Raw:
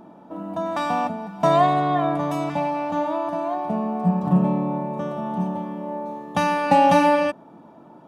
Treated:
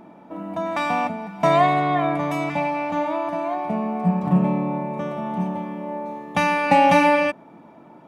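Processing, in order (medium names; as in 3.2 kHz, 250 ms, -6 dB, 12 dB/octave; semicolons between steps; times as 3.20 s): peaking EQ 2.2 kHz +11.5 dB 0.43 oct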